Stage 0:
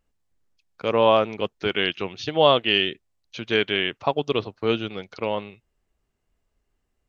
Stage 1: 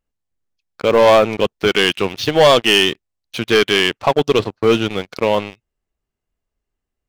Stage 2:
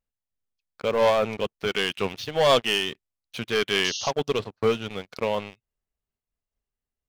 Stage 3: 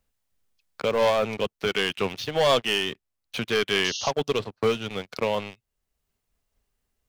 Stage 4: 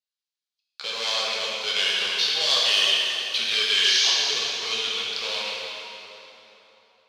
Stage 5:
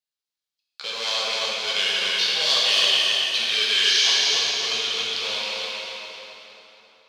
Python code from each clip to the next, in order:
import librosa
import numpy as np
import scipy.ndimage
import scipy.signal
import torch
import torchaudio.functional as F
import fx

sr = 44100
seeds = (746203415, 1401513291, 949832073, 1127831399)

y1 = fx.leveller(x, sr, passes=3)
y2 = fx.peak_eq(y1, sr, hz=330.0, db=-10.0, octaves=0.21)
y2 = fx.spec_paint(y2, sr, seeds[0], shape='noise', start_s=3.84, length_s=0.27, low_hz=2700.0, high_hz=6700.0, level_db=-23.0)
y2 = fx.am_noise(y2, sr, seeds[1], hz=5.7, depth_pct=65)
y2 = F.gain(torch.from_numpy(y2), -5.5).numpy()
y3 = fx.band_squash(y2, sr, depth_pct=40)
y4 = fx.leveller(y3, sr, passes=3)
y4 = fx.bandpass_q(y4, sr, hz=4200.0, q=2.4)
y4 = fx.rev_plate(y4, sr, seeds[2], rt60_s=3.6, hf_ratio=0.7, predelay_ms=0, drr_db=-6.0)
y5 = fx.echo_feedback(y4, sr, ms=271, feedback_pct=38, wet_db=-4.0)